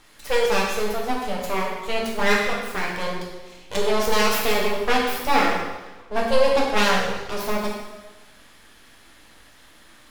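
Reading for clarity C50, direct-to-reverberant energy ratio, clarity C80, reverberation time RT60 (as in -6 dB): 1.5 dB, -3.0 dB, 4.0 dB, 1.2 s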